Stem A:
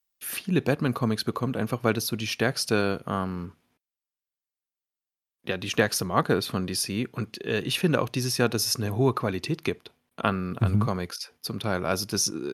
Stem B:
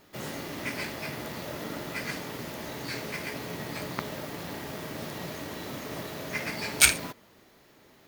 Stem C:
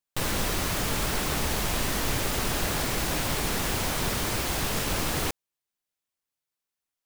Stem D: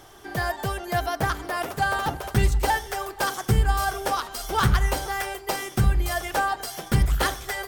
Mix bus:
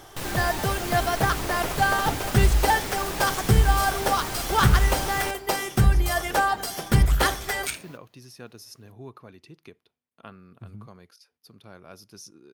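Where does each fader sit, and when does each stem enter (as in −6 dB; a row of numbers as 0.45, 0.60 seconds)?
−19.5, −12.5, −4.5, +2.0 decibels; 0.00, 0.85, 0.00, 0.00 seconds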